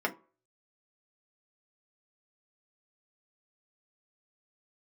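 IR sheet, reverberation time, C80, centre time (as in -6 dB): 0.40 s, 23.5 dB, 8 ms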